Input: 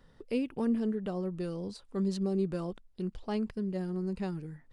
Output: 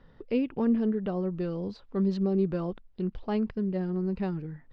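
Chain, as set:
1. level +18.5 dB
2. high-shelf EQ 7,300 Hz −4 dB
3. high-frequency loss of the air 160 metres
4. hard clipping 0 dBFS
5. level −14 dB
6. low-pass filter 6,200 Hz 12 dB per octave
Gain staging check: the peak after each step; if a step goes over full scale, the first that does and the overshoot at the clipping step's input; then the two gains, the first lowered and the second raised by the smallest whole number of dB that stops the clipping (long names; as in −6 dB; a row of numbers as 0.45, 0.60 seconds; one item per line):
−1.5, −2.0, −2.5, −2.5, −16.5, −16.5 dBFS
no step passes full scale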